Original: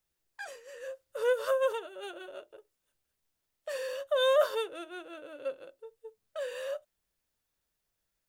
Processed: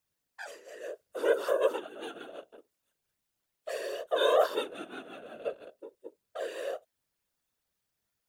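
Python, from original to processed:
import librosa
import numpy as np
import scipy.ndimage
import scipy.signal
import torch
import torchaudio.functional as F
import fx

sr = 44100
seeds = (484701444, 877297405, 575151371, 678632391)

y = scipy.signal.sosfilt(scipy.signal.butter(2, 47.0, 'highpass', fs=sr, output='sos'), x)
y = fx.whisperise(y, sr, seeds[0])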